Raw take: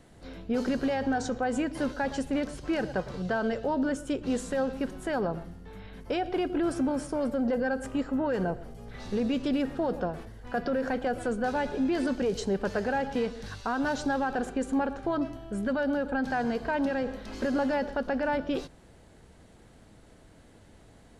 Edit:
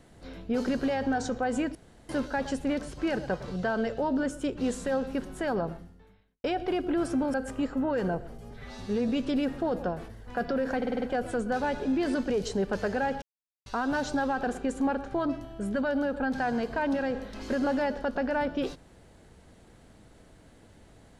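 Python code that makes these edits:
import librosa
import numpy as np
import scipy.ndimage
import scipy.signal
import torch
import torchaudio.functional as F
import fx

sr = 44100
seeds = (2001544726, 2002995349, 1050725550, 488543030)

y = fx.edit(x, sr, fx.insert_room_tone(at_s=1.75, length_s=0.34),
    fx.fade_out_span(start_s=5.34, length_s=0.76, curve='qua'),
    fx.cut(start_s=7.0, length_s=0.7),
    fx.stretch_span(start_s=8.87, length_s=0.38, factor=1.5),
    fx.stutter(start_s=10.94, slice_s=0.05, count=6),
    fx.silence(start_s=13.14, length_s=0.44), tone=tone)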